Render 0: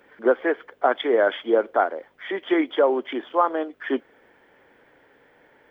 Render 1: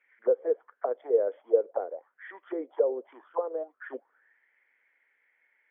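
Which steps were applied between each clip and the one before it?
auto-wah 480–2200 Hz, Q 7.9, down, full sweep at -18 dBFS; air absorption 260 m; gain +1 dB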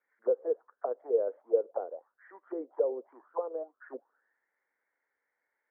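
LPF 1400 Hz 24 dB/oct; gain -3.5 dB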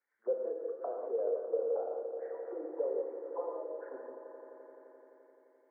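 swelling echo 86 ms, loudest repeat 5, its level -15.5 dB; non-linear reverb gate 0.23 s flat, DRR 0.5 dB; gain -7 dB

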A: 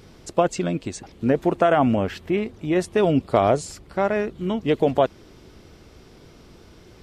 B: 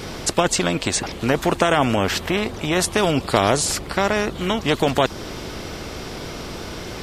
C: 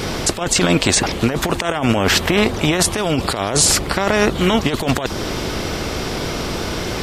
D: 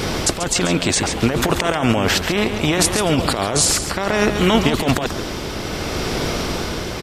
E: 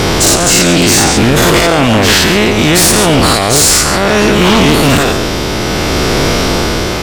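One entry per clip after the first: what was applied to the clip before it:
dynamic EQ 2300 Hz, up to -6 dB, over -40 dBFS, Q 1.3; spectral compressor 2:1; gain +3.5 dB
negative-ratio compressor -21 dBFS, ratio -0.5; gain +6 dB
echo 0.138 s -9 dB; tremolo 0.64 Hz, depth 44%; gain +1 dB
spectral dilation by 0.12 s; sine folder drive 10 dB, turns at 3 dBFS; gain -6.5 dB

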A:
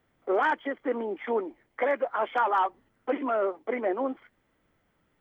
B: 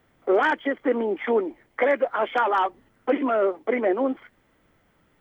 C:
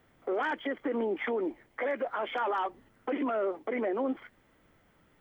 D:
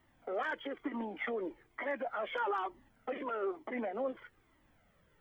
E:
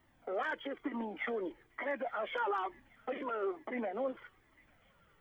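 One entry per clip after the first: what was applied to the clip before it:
dynamic EQ 980 Hz, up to -6 dB, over -37 dBFS, Q 1.1; gain +7.5 dB
limiter -22 dBFS, peak gain reduction 11.5 dB; gain -1.5 dB
cascading flanger falling 1.1 Hz
thin delay 0.849 s, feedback 50%, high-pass 2500 Hz, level -16 dB

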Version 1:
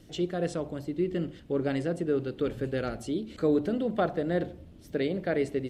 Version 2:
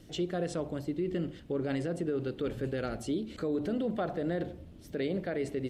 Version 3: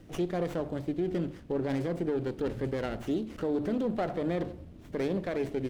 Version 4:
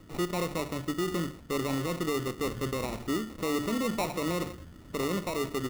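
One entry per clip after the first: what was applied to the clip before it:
limiter -24 dBFS, peak gain reduction 8.5 dB
running maximum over 9 samples; gain +2 dB
sample-rate reducer 1600 Hz, jitter 0%

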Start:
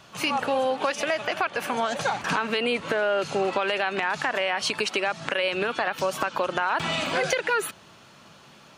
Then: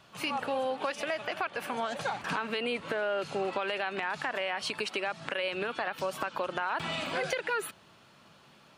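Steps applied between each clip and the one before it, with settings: bell 6300 Hz -5 dB 0.43 oct; gain -7 dB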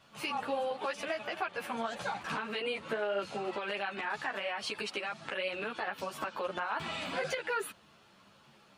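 ensemble effect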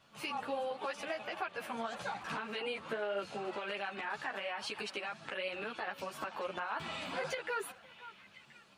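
delay with a stepping band-pass 0.515 s, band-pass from 1000 Hz, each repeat 1.4 oct, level -10.5 dB; gain -3.5 dB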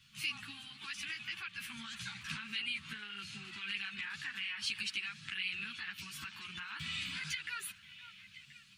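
Chebyshev band-stop 130–2500 Hz, order 2; gain +5.5 dB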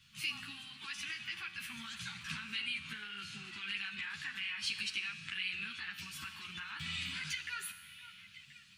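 resonator 85 Hz, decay 1.3 s, harmonics all, mix 70%; gain +9 dB

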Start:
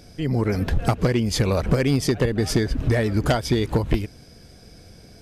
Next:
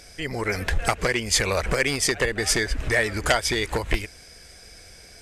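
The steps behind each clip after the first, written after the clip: graphic EQ 125/250/2000/8000 Hz -11/-9/+9/+10 dB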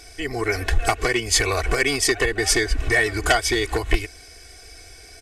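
comb 2.7 ms, depth 85%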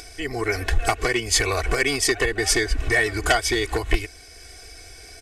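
upward compressor, threshold -36 dBFS; gain -1 dB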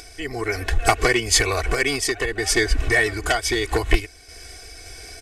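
random-step tremolo; gain +4.5 dB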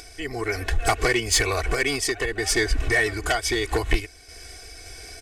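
soft clip -9 dBFS, distortion -18 dB; gain -1.5 dB

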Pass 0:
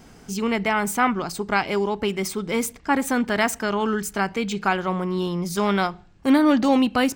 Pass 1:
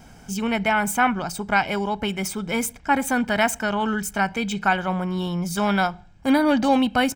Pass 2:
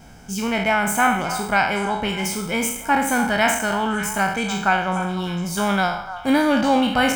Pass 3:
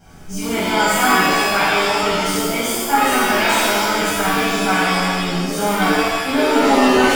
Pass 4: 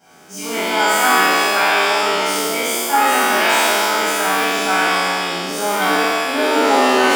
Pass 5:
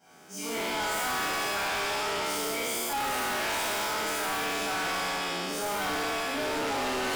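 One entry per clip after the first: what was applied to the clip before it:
notch 4200 Hz, Q 11; comb 1.3 ms, depth 49%
spectral trails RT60 0.63 s; delay with a stepping band-pass 0.295 s, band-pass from 990 Hz, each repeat 1.4 oct, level -9 dB; requantised 12-bit, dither triangular
shimmer reverb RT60 1.1 s, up +7 st, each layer -2 dB, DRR -8 dB; gain -7.5 dB
spectral trails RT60 1.64 s; HPF 340 Hz 12 dB/oct; gain -1.5 dB
overloaded stage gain 20.5 dB; gain -8 dB

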